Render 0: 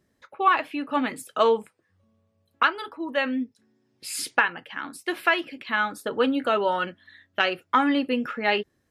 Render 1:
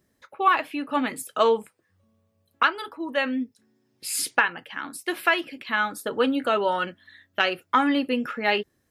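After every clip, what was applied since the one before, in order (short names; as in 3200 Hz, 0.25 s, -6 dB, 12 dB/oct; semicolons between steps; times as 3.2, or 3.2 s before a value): high shelf 9100 Hz +9.5 dB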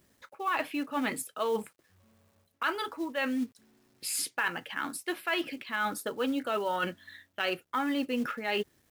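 companded quantiser 6-bit; reverse; compressor 6:1, threshold -29 dBFS, peak gain reduction 14.5 dB; reverse; gain +1 dB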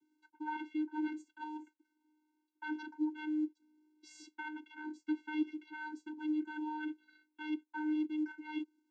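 vocoder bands 16, square 306 Hz; gain -5.5 dB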